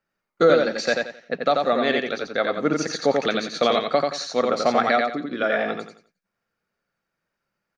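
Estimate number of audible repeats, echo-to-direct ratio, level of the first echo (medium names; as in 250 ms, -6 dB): 3, -3.0 dB, -3.5 dB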